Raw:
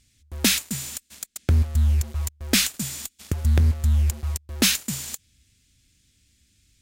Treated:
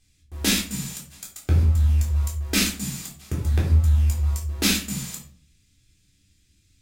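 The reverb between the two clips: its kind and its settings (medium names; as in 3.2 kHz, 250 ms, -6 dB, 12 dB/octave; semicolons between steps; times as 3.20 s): simulated room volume 380 m³, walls furnished, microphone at 3.7 m; trim -7 dB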